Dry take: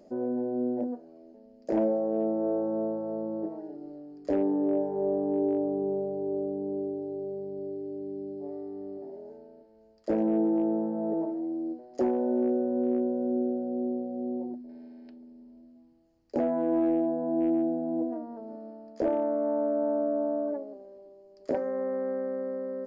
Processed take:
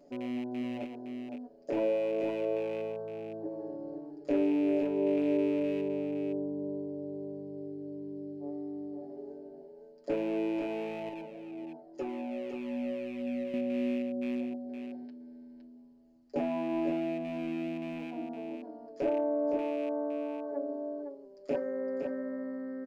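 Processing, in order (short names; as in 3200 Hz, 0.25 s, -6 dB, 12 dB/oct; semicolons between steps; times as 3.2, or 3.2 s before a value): rattling part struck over -35 dBFS, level -33 dBFS; comb 7.1 ms, depth 87%; echo 0.513 s -6.5 dB; 11.09–13.54 cascading flanger falling 1.9 Hz; gain -6 dB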